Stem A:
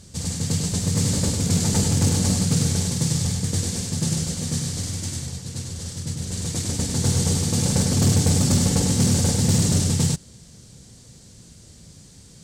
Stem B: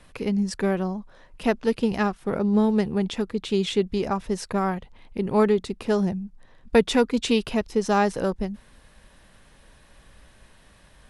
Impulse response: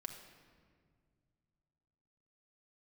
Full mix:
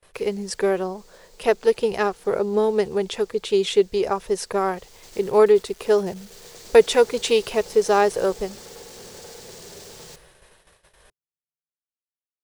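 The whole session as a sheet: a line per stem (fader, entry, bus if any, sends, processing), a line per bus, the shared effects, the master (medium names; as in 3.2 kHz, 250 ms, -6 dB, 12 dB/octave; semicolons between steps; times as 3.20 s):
4.57 s -16.5 dB -> 5.17 s -4 dB, 0.00 s, send -11 dB, three-band isolator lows -15 dB, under 250 Hz, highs -13 dB, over 6.2 kHz; peak limiter -22 dBFS, peak gain reduction 8.5 dB; word length cut 6-bit, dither none; auto duck -10 dB, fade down 0.55 s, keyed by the second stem
+1.5 dB, 0.00 s, no send, treble shelf 7.8 kHz +7.5 dB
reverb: on, RT60 2.0 s, pre-delay 5 ms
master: gate -50 dBFS, range -28 dB; resonant low shelf 330 Hz -6.5 dB, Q 3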